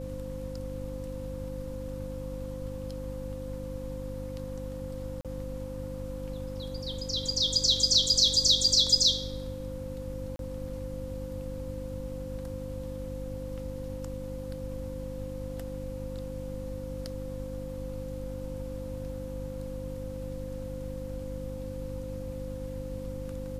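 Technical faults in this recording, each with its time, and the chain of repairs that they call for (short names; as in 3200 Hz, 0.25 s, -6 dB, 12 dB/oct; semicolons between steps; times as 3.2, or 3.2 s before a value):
hum 50 Hz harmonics 6 -39 dBFS
tone 520 Hz -39 dBFS
5.21–5.25 gap 37 ms
10.36–10.39 gap 32 ms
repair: notch 520 Hz, Q 30; de-hum 50 Hz, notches 6; interpolate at 5.21, 37 ms; interpolate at 10.36, 32 ms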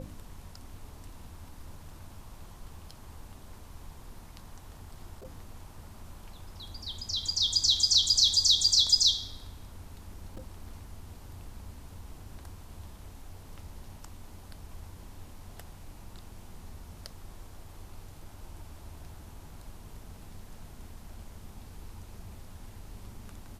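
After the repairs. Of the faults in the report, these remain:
none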